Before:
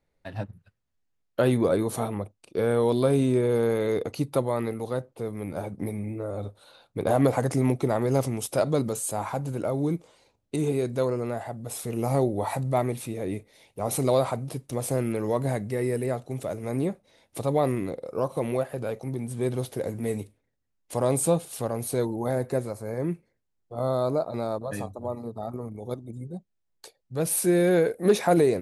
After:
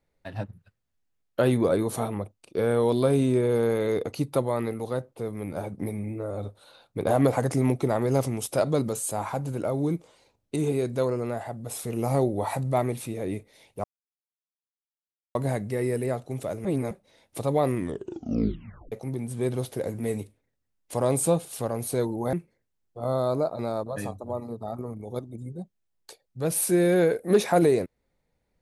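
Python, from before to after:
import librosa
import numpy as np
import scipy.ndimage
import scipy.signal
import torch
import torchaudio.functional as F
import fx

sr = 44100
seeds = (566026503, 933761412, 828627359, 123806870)

y = fx.edit(x, sr, fx.silence(start_s=13.84, length_s=1.51),
    fx.reverse_span(start_s=16.65, length_s=0.26),
    fx.tape_stop(start_s=17.75, length_s=1.17),
    fx.cut(start_s=22.33, length_s=0.75), tone=tone)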